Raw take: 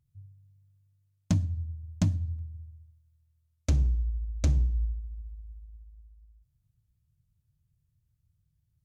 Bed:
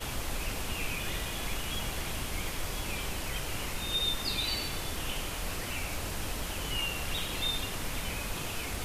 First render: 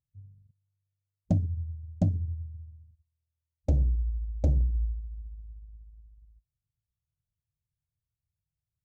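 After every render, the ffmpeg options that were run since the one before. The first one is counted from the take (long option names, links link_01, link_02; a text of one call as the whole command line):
ffmpeg -i in.wav -af "afwtdn=0.01,equalizer=frequency=580:width_type=o:width=0.82:gain=8" out.wav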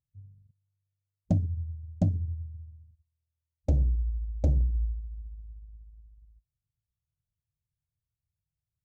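ffmpeg -i in.wav -af anull out.wav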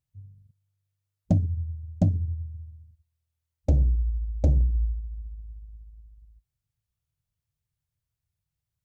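ffmpeg -i in.wav -af "volume=3.5dB" out.wav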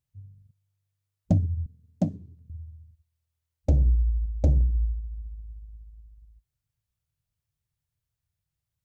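ffmpeg -i in.wav -filter_complex "[0:a]asettb=1/sr,asplit=3[link_01][link_02][link_03];[link_01]atrim=end=1.664[link_04];[link_02]atrim=start=1.66:end=2.5,asetpts=PTS-STARTPTS,afade=type=in:duration=0.004:curve=qsin,afade=type=out:start_time=0.836:duration=0.004:curve=qsin,highpass=frequency=150:width=0.5412,highpass=frequency=150:width=1.3066[link_05];[link_03]atrim=start=2.496[link_06];[link_04][link_05]acrossfade=duration=0.004:curve1=hsin:curve2=qsin[link_07];[link_07][link_06]acrossfade=duration=0.004:curve1=qsin:curve2=hsin,asettb=1/sr,asplit=3[link_08][link_09][link_10];[link_08]atrim=end=3.844[link_11];[link_09]atrim=start=3.84:end=4.26,asetpts=PTS-STARTPTS,afade=type=in:duration=0.004:curve=qsin,afade=type=out:start_time=0.416:duration=0.004:curve=qsin,asplit=2[link_12][link_13];[link_13]adelay=18,volume=-10dB[link_14];[link_12][link_14]amix=inputs=2:normalize=0,atrim=end_sample=18522[link_15];[link_10]atrim=start=4.256[link_16];[link_11][link_15]acrossfade=duration=0.004:curve1=hsin:curve2=qsin[link_17];[link_17][link_16]acrossfade=duration=0.004:curve1=qsin:curve2=hsin" out.wav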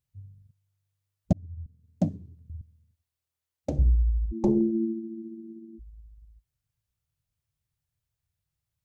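ffmpeg -i in.wav -filter_complex "[0:a]asettb=1/sr,asplit=3[link_01][link_02][link_03];[link_01]atrim=end=2.614[link_04];[link_02]atrim=start=2.61:end=3.79,asetpts=PTS-STARTPTS,afade=type=in:duration=0.004:curve=qsin,afade=type=out:start_time=1.176:duration=0.004:curve=qsin,highpass=190[link_05];[link_03]atrim=start=3.786[link_06];[link_04][link_05]acrossfade=duration=0.004:curve1=hsin:curve2=qsin[link_07];[link_07][link_06]acrossfade=duration=0.004:curve1=qsin:curve2=hsin,asplit=3[link_08][link_09][link_10];[link_08]afade=type=out:start_time=4.31:duration=0.02[link_11];[link_09]aeval=exprs='val(0)*sin(2*PI*280*n/s)':channel_layout=same,afade=type=in:start_time=4.31:duration=0.02,afade=type=out:start_time=5.78:duration=0.02[link_12];[link_10]afade=type=in:start_time=5.78:duration=0.02[link_13];[link_11][link_12][link_13]amix=inputs=3:normalize=0,asplit=2[link_14][link_15];[link_14]atrim=end=1.33,asetpts=PTS-STARTPTS,afade=type=out:start_time=1.326:duration=0.004:curve=hsin[link_16];[link_15]atrim=start=1.33,asetpts=PTS-STARTPTS,afade=type=in:duration=0.72[link_17];[link_16][link_17]concat=n=2:v=0:a=1" out.wav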